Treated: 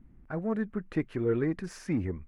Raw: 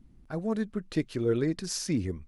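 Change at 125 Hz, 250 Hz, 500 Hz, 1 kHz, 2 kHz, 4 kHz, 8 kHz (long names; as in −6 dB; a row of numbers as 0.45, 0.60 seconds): −1.0 dB, −1.0 dB, −1.0 dB, +1.0 dB, +1.0 dB, below −10 dB, below −15 dB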